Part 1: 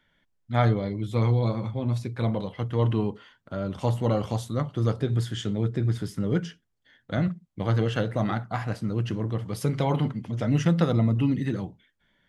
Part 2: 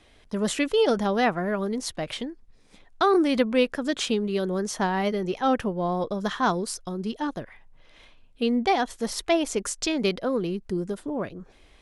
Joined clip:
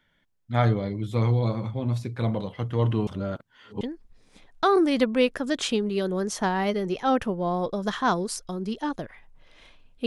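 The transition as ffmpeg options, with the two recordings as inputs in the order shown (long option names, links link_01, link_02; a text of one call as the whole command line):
ffmpeg -i cue0.wav -i cue1.wav -filter_complex "[0:a]apad=whole_dur=10.06,atrim=end=10.06,asplit=2[link_01][link_02];[link_01]atrim=end=3.072[link_03];[link_02]atrim=start=3.068:end=3.812,asetpts=PTS-STARTPTS,areverse[link_04];[1:a]atrim=start=2.188:end=8.44[link_05];[link_03][link_04]acrossfade=duration=0.004:curve1=hsin:curve2=hsin[link_06];[link_06][link_05]acrossfade=duration=0.004:curve1=hsin:curve2=hsin" out.wav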